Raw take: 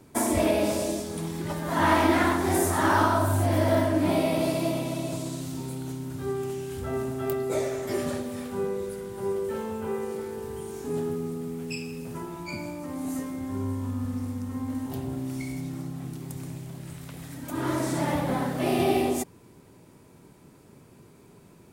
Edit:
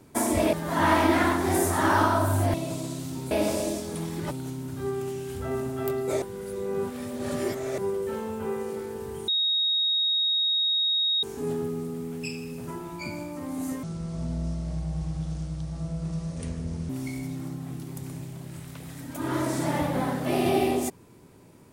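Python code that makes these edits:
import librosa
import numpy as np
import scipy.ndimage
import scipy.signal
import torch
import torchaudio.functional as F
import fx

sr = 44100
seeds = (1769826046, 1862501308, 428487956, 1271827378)

y = fx.edit(x, sr, fx.move(start_s=0.53, length_s=1.0, to_s=5.73),
    fx.cut(start_s=3.54, length_s=1.42),
    fx.reverse_span(start_s=7.64, length_s=1.56),
    fx.insert_tone(at_s=10.7, length_s=1.95, hz=3760.0, db=-21.5),
    fx.speed_span(start_s=13.3, length_s=1.93, speed=0.63), tone=tone)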